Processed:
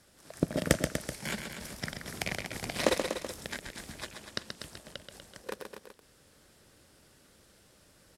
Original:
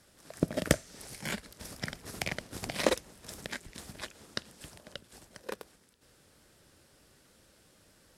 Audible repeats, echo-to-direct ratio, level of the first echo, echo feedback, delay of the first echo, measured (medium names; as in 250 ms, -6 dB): 3, -4.0 dB, -6.5 dB, no regular repeats, 130 ms